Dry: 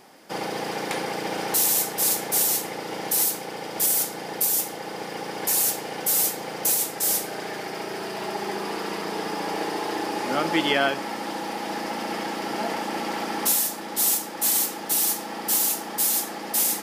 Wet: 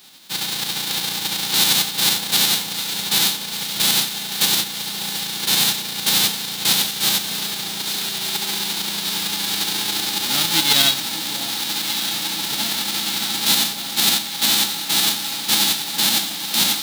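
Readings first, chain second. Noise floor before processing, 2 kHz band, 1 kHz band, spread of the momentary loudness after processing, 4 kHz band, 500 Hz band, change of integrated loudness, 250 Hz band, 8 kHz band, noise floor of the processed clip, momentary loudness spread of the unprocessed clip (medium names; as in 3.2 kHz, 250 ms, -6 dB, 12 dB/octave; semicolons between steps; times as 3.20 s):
-35 dBFS, +5.5 dB, -1.0 dB, 7 LU, +15.5 dB, -7.0 dB, +5.5 dB, +0.5 dB, +3.5 dB, -28 dBFS, 11 LU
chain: formants flattened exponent 0.1; tremolo saw up 11 Hz, depth 40%; peaking EQ 3.8 kHz +13 dB 0.71 oct; echo whose repeats swap between lows and highs 602 ms, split 960 Hz, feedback 85%, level -11 dB; trim +3 dB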